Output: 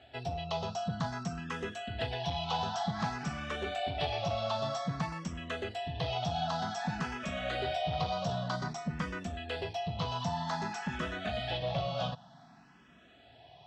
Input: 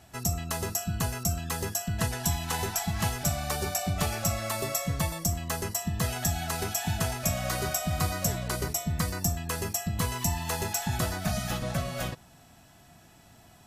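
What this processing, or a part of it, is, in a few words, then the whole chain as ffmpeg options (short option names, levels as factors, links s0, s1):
barber-pole phaser into a guitar amplifier: -filter_complex "[0:a]asplit=2[s0][s1];[s1]afreqshift=0.53[s2];[s0][s2]amix=inputs=2:normalize=1,asoftclip=type=tanh:threshold=0.0473,highpass=91,equalizer=f=92:t=q:w=4:g=-10,equalizer=f=330:t=q:w=4:g=-6,equalizer=f=720:t=q:w=4:g=5,equalizer=f=2100:t=q:w=4:g=-4,equalizer=f=3300:t=q:w=4:g=5,lowpass=f=4300:w=0.5412,lowpass=f=4300:w=1.3066,volume=1.26"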